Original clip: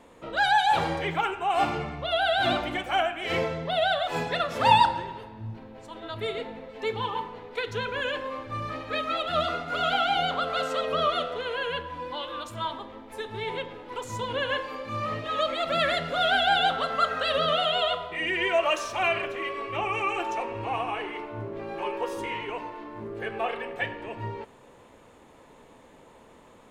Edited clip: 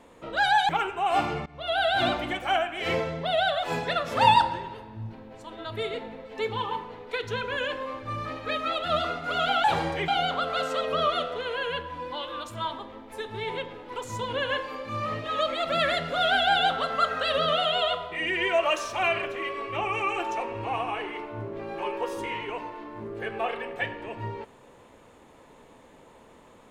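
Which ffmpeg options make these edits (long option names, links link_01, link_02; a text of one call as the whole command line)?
ffmpeg -i in.wav -filter_complex "[0:a]asplit=5[link_01][link_02][link_03][link_04][link_05];[link_01]atrim=end=0.692[link_06];[link_02]atrim=start=1.128:end=1.9,asetpts=PTS-STARTPTS,afade=type=out:start_time=0.768:duration=0.004:curve=hsin:silence=0.0891251[link_07];[link_03]atrim=start=1.9:end=10.082,asetpts=PTS-STARTPTS,afade=type=in:duration=0.33:silence=0.0891251[link_08];[link_04]atrim=start=0.688:end=1.132[link_09];[link_05]atrim=start=10.078[link_10];[link_07][link_08]concat=n=2:v=0:a=1[link_11];[link_06][link_11]acrossfade=duration=0.004:curve1=hsin:curve2=hsin[link_12];[link_12][link_09]acrossfade=duration=0.004:curve1=hsin:curve2=hsin[link_13];[link_13][link_10]acrossfade=duration=0.004:curve1=hsin:curve2=hsin" out.wav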